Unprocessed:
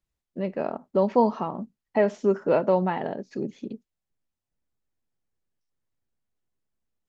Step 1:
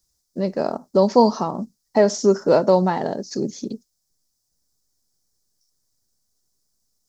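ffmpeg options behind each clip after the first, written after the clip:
-af "highshelf=f=3.8k:t=q:w=3:g=12,volume=6dB"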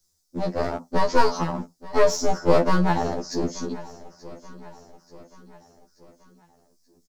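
-af "aeval=exprs='clip(val(0),-1,0.0531)':c=same,aecho=1:1:882|1764|2646|3528:0.112|0.0583|0.0303|0.0158,afftfilt=real='re*2*eq(mod(b,4),0)':imag='im*2*eq(mod(b,4),0)':win_size=2048:overlap=0.75,volume=3dB"

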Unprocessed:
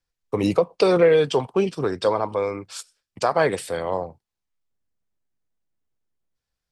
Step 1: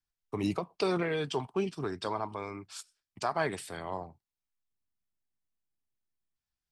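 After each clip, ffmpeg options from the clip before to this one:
-af "equalizer=f=510:t=o:w=0.28:g=-14.5,volume=-8.5dB"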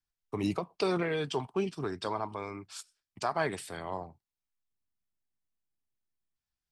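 -af anull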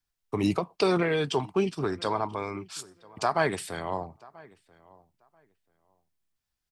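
-filter_complex "[0:a]asplit=2[a][b];[b]adelay=986,lowpass=f=2.6k:p=1,volume=-23.5dB,asplit=2[c][d];[d]adelay=986,lowpass=f=2.6k:p=1,volume=0.19[e];[a][c][e]amix=inputs=3:normalize=0,volume=5.5dB"

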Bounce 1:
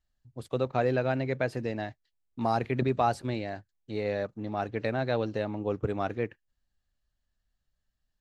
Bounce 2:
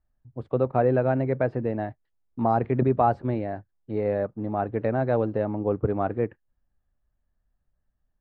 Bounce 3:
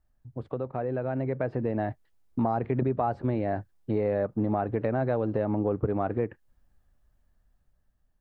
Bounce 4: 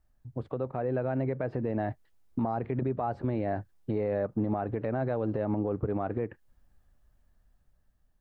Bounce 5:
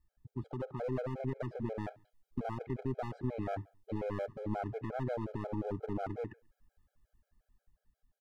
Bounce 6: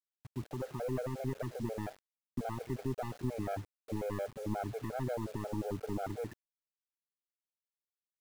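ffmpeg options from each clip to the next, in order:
-af "lowpass=1.2k,volume=5.5dB"
-filter_complex "[0:a]acompressor=threshold=-29dB:ratio=6,asplit=2[a][b];[b]alimiter=level_in=5.5dB:limit=-24dB:level=0:latency=1:release=93,volume=-5.5dB,volume=2.5dB[c];[a][c]amix=inputs=2:normalize=0,dynaudnorm=f=520:g=5:m=5.5dB,volume=-4dB"
-af "alimiter=limit=-22dB:level=0:latency=1:release=150,volume=1.5dB"
-af "aeval=exprs='clip(val(0),-1,0.0168)':c=same,aecho=1:1:69|138|207:0.0841|0.032|0.0121,afftfilt=real='re*gt(sin(2*PI*5.6*pts/sr)*(1-2*mod(floor(b*sr/1024/420),2)),0)':imag='im*gt(sin(2*PI*5.6*pts/sr)*(1-2*mod(floor(b*sr/1024/420),2)),0)':win_size=1024:overlap=0.75,volume=-2.5dB"
-af "acrusher=bits=8:mix=0:aa=0.000001"

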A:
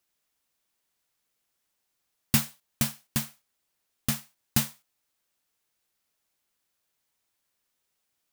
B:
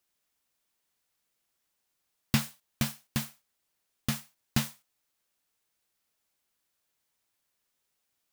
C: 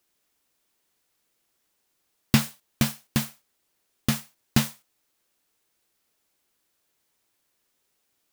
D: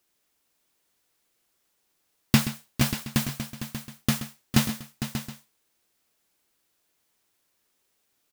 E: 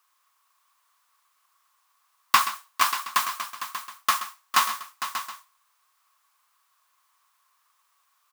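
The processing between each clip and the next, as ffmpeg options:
-filter_complex "[0:a]acrossover=split=5500[a][b];[b]acompressor=threshold=-31dB:ratio=4:attack=1:release=60[c];[a][c]amix=inputs=2:normalize=0,volume=-1dB"
-af "equalizer=f=350:t=o:w=1.1:g=5,volume=5.5dB"
-af "aecho=1:1:127|455|587|721:0.224|0.282|0.282|0.106"
-af "highpass=f=1.1k:t=q:w=10,volume=2dB"

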